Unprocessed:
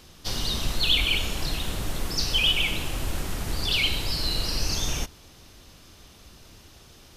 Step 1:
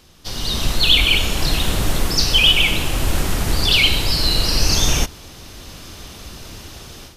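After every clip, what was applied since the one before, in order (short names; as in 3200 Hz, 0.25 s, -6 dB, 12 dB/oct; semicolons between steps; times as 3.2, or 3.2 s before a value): AGC gain up to 14 dB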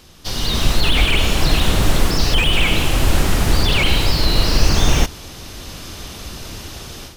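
slew limiter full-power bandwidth 220 Hz; gain +4 dB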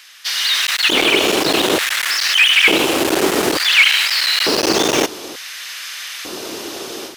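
hard clip -11 dBFS, distortion -12 dB; LFO high-pass square 0.56 Hz 360–1800 Hz; gain +5 dB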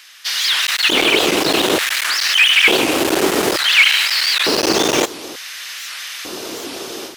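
record warp 78 rpm, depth 250 cents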